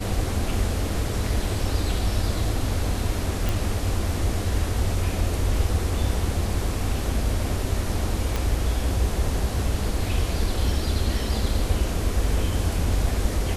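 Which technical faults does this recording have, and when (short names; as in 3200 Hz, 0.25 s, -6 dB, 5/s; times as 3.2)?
3.49 pop
8.36 pop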